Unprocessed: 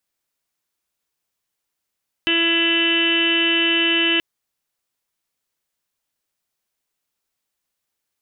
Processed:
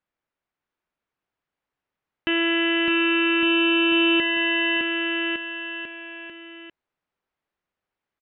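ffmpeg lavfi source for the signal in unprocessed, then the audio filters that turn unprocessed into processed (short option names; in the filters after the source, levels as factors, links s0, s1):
-f lavfi -i "aevalsrc='0.0794*sin(2*PI*334*t)+0.0178*sin(2*PI*668*t)+0.0133*sin(2*PI*1002*t)+0.0158*sin(2*PI*1336*t)+0.0501*sin(2*PI*1670*t)+0.0422*sin(2*PI*2004*t)+0.0224*sin(2*PI*2338*t)+0.0891*sin(2*PI*2672*t)+0.112*sin(2*PI*3006*t)+0.0141*sin(2*PI*3340*t)+0.0119*sin(2*PI*3674*t)':d=1.93:s=44100"
-filter_complex "[0:a]lowpass=2000,asplit=2[s0][s1];[s1]aecho=0:1:610|1159|1653|2098|2498:0.631|0.398|0.251|0.158|0.1[s2];[s0][s2]amix=inputs=2:normalize=0"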